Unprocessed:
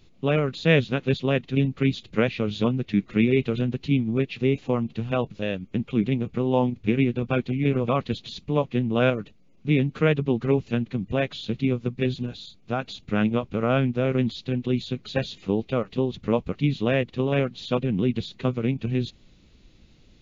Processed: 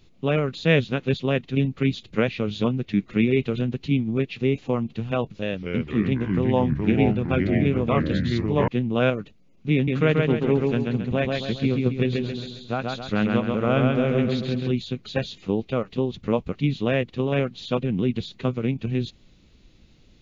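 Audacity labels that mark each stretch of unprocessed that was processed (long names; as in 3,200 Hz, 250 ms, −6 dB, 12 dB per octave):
5.280000	8.680000	delay with pitch and tempo change per echo 214 ms, each echo −3 semitones, echoes 3
9.740000	14.710000	repeating echo 135 ms, feedback 44%, level −3 dB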